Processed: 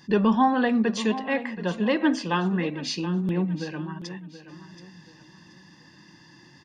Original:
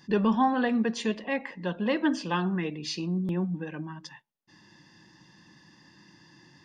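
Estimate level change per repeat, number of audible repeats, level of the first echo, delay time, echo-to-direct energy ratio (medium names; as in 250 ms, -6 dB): -9.5 dB, 3, -13.5 dB, 727 ms, -13.0 dB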